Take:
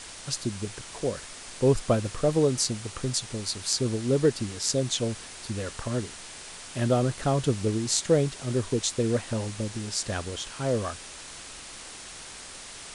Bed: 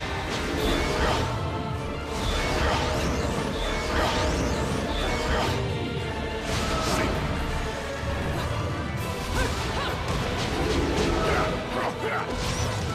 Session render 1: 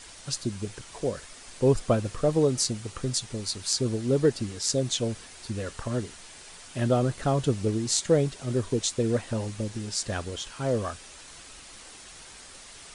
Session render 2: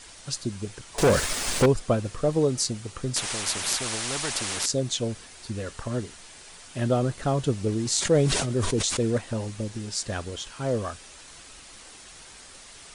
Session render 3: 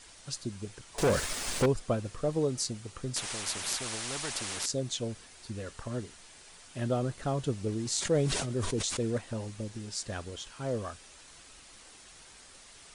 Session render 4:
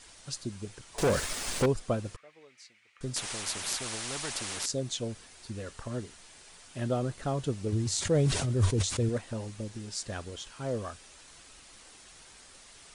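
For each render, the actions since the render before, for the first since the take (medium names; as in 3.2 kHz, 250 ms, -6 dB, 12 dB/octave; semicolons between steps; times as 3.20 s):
noise reduction 6 dB, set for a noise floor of -43 dBFS
0.98–1.66 s: waveshaping leveller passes 5; 3.16–4.66 s: spectrum-flattening compressor 4:1; 7.69–9.18 s: decay stretcher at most 33 dB/s
trim -6.5 dB
2.16–3.01 s: band-pass filter 2.2 kHz, Q 4.6; 7.72–9.09 s: peaking EQ 92 Hz +15 dB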